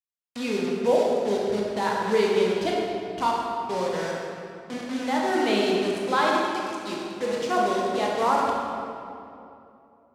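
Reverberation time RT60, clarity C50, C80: 2.7 s, −1.0 dB, 0.5 dB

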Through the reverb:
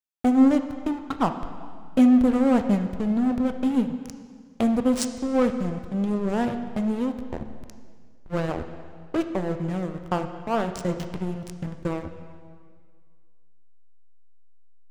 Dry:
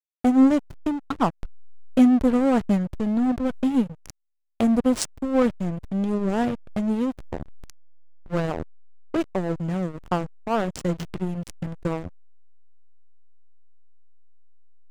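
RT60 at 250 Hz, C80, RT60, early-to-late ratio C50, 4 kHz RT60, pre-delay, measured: 1.9 s, 10.0 dB, 1.9 s, 9.0 dB, 1.8 s, 7 ms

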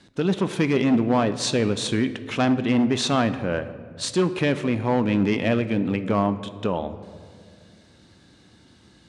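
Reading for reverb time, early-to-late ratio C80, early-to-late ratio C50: 2.0 s, 14.5 dB, 13.0 dB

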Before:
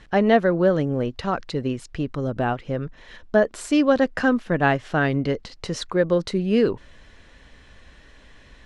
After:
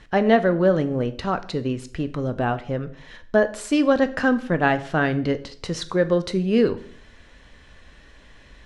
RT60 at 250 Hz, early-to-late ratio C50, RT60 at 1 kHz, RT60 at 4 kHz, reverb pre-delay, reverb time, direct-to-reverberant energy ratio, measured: 0.65 s, 16.0 dB, 0.50 s, 0.50 s, 11 ms, 0.55 s, 11.0 dB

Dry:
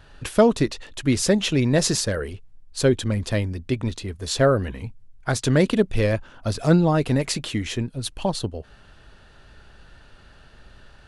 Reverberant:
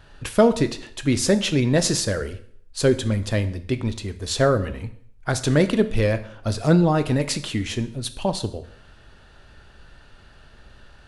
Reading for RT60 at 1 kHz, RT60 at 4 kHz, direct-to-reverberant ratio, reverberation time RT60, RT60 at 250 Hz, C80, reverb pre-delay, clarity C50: 0.60 s, 0.55 s, 10.5 dB, 0.60 s, 0.55 s, 18.0 dB, 6 ms, 14.5 dB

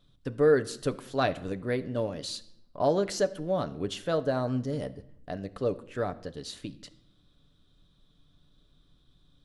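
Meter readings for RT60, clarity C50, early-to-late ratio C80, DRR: 0.75 s, 17.5 dB, 20.5 dB, 9.0 dB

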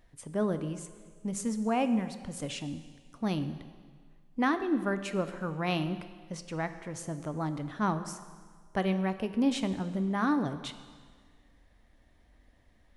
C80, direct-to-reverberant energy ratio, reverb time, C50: 12.5 dB, 10.0 dB, 1.7 s, 11.5 dB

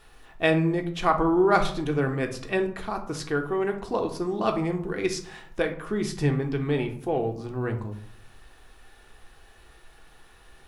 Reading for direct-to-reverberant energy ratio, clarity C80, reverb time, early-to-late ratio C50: 3.5 dB, 15.0 dB, 0.60 s, 11.0 dB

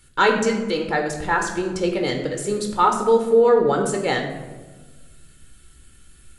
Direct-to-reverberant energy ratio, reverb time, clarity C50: 2.5 dB, 1.3 s, 6.5 dB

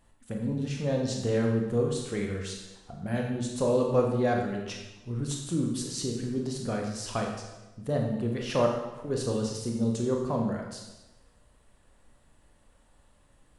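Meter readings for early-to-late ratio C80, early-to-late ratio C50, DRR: 5.5 dB, 3.0 dB, 0.5 dB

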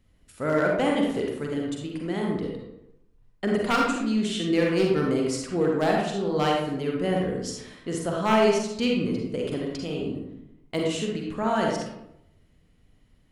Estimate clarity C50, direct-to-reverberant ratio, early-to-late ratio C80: 0.5 dB, −1.5 dB, 4.0 dB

